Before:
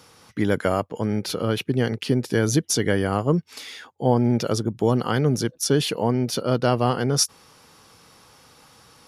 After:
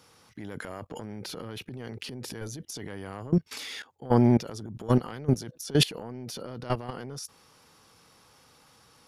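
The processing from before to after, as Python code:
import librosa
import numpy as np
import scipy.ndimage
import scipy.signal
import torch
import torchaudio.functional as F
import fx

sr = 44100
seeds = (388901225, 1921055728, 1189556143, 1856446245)

y = fx.transient(x, sr, attack_db=-11, sustain_db=7)
y = fx.level_steps(y, sr, step_db=20)
y = F.gain(torch.from_numpy(y), 1.0).numpy()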